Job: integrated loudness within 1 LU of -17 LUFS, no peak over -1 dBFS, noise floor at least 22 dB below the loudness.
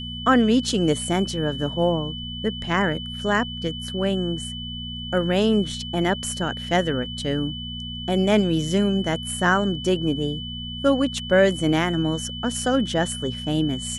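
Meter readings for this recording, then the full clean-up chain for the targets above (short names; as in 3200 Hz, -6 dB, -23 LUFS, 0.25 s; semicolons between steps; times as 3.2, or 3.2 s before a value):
hum 60 Hz; harmonics up to 240 Hz; hum level -32 dBFS; steady tone 3000 Hz; tone level -33 dBFS; loudness -23.0 LUFS; peak -5.0 dBFS; loudness target -17.0 LUFS
-> de-hum 60 Hz, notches 4; notch 3000 Hz, Q 30; gain +6 dB; limiter -1 dBFS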